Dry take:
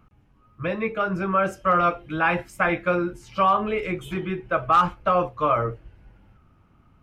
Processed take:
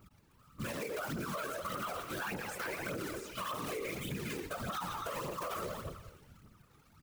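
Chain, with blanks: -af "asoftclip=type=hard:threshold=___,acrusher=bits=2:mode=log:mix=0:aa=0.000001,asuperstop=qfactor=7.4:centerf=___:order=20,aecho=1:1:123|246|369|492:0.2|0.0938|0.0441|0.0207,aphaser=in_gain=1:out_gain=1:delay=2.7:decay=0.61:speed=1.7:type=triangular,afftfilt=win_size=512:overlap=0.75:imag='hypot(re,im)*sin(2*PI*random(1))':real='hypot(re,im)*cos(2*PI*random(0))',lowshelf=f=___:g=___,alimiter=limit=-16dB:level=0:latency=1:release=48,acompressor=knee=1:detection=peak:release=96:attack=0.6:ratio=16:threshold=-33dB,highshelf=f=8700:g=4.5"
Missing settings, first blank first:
-16.5dB, 750, 67, -9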